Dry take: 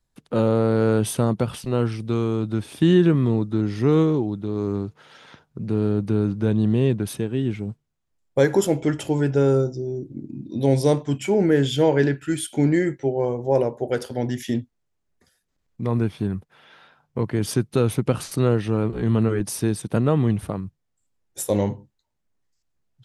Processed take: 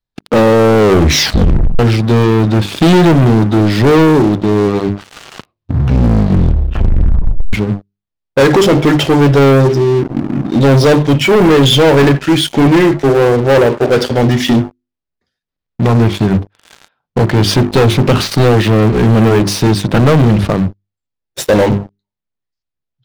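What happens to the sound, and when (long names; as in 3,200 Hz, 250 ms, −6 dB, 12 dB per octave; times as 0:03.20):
0:00.78: tape stop 1.01 s
0:04.86: tape stop 2.67 s
whole clip: high shelf with overshoot 6,300 Hz −13.5 dB, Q 1.5; mains-hum notches 50/100/150/200/250/300/350/400 Hz; leveller curve on the samples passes 5; level +1.5 dB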